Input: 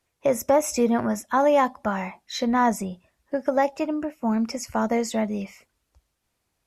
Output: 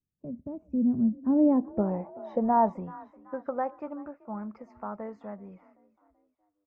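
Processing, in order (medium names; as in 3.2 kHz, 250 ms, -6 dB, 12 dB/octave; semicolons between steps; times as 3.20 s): Doppler pass-by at 1.63 s, 20 m/s, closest 10 m; frequency-shifting echo 382 ms, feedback 46%, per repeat +35 Hz, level -22 dB; low-pass sweep 210 Hz -> 1.2 kHz, 1.06–2.97 s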